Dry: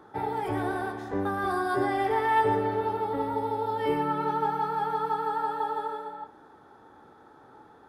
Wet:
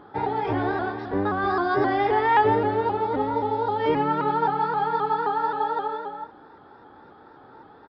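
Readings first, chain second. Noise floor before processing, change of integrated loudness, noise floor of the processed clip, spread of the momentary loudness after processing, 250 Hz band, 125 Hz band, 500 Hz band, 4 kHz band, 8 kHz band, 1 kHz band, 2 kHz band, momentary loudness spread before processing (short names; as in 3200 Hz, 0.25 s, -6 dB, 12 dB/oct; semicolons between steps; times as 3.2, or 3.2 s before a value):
-54 dBFS, +4.5 dB, -50 dBFS, 8 LU, +4.5 dB, +4.5 dB, +4.5 dB, +4.5 dB, n/a, +4.5 dB, +4.5 dB, 8 LU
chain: downsampling 11025 Hz; shaped vibrato saw up 3.8 Hz, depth 100 cents; gain +4.5 dB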